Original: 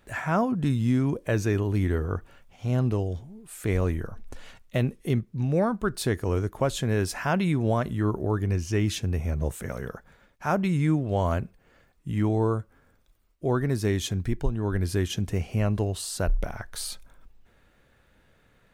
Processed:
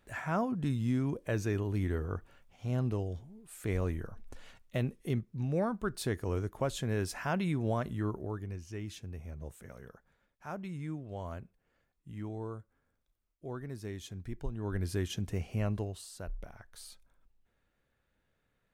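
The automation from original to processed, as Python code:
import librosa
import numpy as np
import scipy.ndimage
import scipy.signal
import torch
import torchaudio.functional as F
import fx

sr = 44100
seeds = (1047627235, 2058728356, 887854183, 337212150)

y = fx.gain(x, sr, db=fx.line((7.98, -7.5), (8.6, -16.0), (14.09, -16.0), (14.77, -7.5), (15.72, -7.5), (16.12, -16.0)))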